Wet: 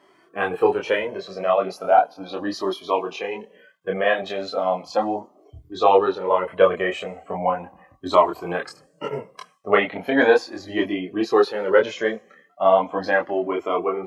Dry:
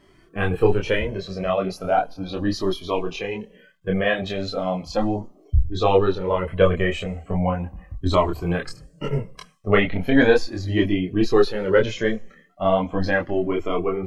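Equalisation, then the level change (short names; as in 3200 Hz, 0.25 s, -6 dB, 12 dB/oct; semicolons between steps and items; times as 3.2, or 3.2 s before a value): HPF 280 Hz 12 dB/oct; bell 880 Hz +8.5 dB 1.6 oct; -2.5 dB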